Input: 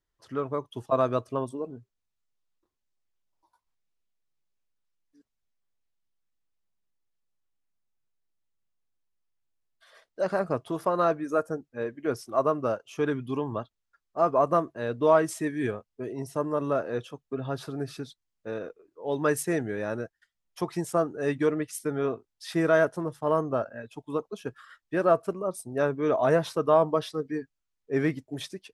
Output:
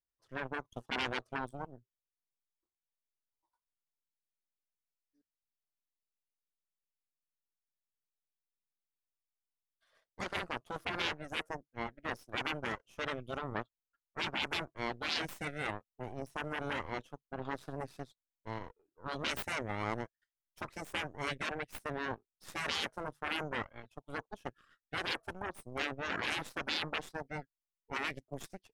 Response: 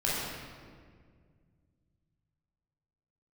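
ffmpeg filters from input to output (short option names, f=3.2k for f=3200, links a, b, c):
-af "aeval=exprs='0.355*(cos(1*acos(clip(val(0)/0.355,-1,1)))-cos(1*PI/2))+0.126*(cos(2*acos(clip(val(0)/0.355,-1,1)))-cos(2*PI/2))+0.1*(cos(3*acos(clip(val(0)/0.355,-1,1)))-cos(3*PI/2))+0.0631*(cos(6*acos(clip(val(0)/0.355,-1,1)))-cos(6*PI/2))+0.0141*(cos(7*acos(clip(val(0)/0.355,-1,1)))-cos(7*PI/2))':c=same,afftfilt=real='re*lt(hypot(re,im),0.0794)':imag='im*lt(hypot(re,im),0.0794)':win_size=1024:overlap=0.75,volume=1.5dB"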